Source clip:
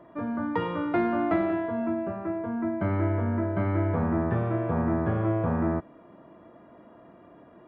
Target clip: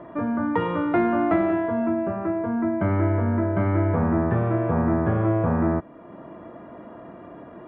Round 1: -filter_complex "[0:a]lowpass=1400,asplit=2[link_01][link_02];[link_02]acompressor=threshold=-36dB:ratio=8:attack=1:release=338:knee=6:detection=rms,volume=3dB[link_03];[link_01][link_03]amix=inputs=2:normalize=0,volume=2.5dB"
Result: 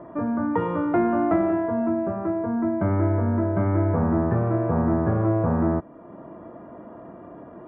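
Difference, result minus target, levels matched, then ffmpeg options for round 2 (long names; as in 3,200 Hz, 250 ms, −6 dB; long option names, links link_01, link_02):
4,000 Hz band −10.0 dB
-filter_complex "[0:a]lowpass=2900,asplit=2[link_01][link_02];[link_02]acompressor=threshold=-36dB:ratio=8:attack=1:release=338:knee=6:detection=rms,volume=3dB[link_03];[link_01][link_03]amix=inputs=2:normalize=0,volume=2.5dB"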